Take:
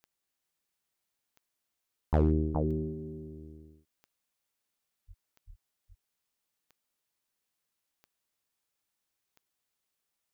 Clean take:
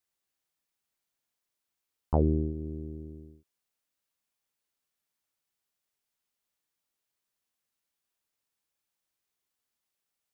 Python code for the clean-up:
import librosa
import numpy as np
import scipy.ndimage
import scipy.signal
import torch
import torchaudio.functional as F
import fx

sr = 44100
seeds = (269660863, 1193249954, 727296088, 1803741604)

y = fx.fix_declip(x, sr, threshold_db=-17.0)
y = fx.fix_declick_ar(y, sr, threshold=10.0)
y = fx.fix_deplosive(y, sr, at_s=(5.07, 5.46))
y = fx.fix_echo_inverse(y, sr, delay_ms=419, level_db=-5.0)